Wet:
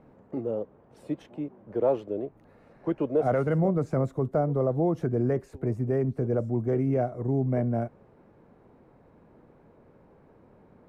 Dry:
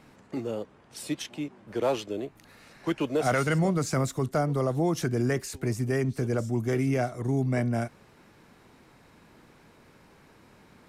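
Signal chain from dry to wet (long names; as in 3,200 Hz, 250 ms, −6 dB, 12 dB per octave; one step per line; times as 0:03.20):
drawn EQ curve 320 Hz 0 dB, 520 Hz +4 dB, 5,100 Hz −24 dB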